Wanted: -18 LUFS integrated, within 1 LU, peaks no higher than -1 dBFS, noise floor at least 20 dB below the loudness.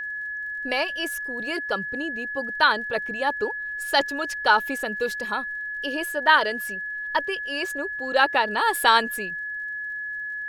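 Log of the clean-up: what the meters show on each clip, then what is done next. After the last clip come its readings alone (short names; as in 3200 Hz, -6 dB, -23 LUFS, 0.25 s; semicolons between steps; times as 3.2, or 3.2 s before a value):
ticks 35/s; steady tone 1700 Hz; tone level -29 dBFS; loudness -24.5 LUFS; peak -4.0 dBFS; loudness target -18.0 LUFS
-> de-click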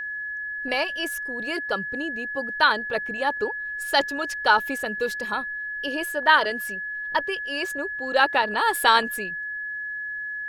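ticks 0.67/s; steady tone 1700 Hz; tone level -29 dBFS
-> notch 1700 Hz, Q 30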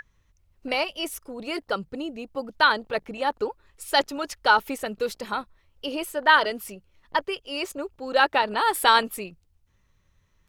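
steady tone none; loudness -25.0 LUFS; peak -4.5 dBFS; loudness target -18.0 LUFS
-> gain +7 dB; limiter -1 dBFS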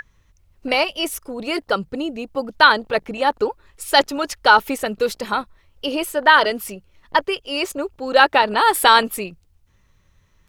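loudness -18.5 LUFS; peak -1.0 dBFS; noise floor -60 dBFS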